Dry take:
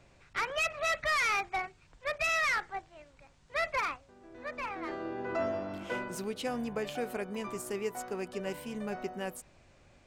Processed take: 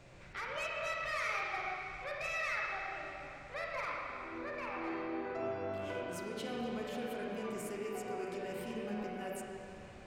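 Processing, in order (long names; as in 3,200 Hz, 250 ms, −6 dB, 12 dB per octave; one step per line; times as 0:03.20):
in parallel at +2 dB: brickwall limiter −33 dBFS, peak gain reduction 11 dB
on the sum: downward compressor 2 to 1, threshold −44 dBFS, peak gain reduction 10.5 dB
convolution reverb RT60 2.8 s, pre-delay 32 ms, DRR −3.5 dB
level −5 dB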